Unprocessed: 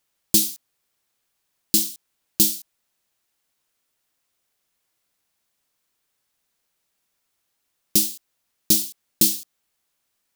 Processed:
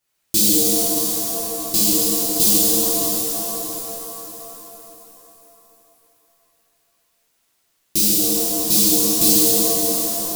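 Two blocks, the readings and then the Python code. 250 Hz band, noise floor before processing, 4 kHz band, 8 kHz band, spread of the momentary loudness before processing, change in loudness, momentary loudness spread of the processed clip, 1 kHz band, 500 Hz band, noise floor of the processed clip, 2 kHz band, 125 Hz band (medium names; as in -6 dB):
+9.5 dB, -75 dBFS, +7.0 dB, +8.0 dB, 12 LU, +4.5 dB, 14 LU, no reading, +18.0 dB, -67 dBFS, +8.5 dB, +7.5 dB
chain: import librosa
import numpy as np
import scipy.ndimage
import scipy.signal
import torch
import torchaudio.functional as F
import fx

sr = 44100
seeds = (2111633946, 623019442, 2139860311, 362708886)

y = fx.echo_feedback(x, sr, ms=622, feedback_pct=30, wet_db=-12.0)
y = fx.rev_shimmer(y, sr, seeds[0], rt60_s=3.4, semitones=7, shimmer_db=-2, drr_db=-11.0)
y = F.gain(torch.from_numpy(y), -5.0).numpy()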